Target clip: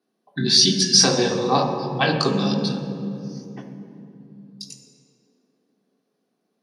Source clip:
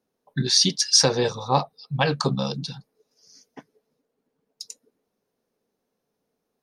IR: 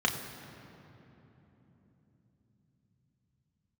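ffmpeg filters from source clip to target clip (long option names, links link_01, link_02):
-filter_complex "[0:a]highpass=160[link_01];[1:a]atrim=start_sample=2205,asetrate=66150,aresample=44100[link_02];[link_01][link_02]afir=irnorm=-1:irlink=0,volume=-3dB"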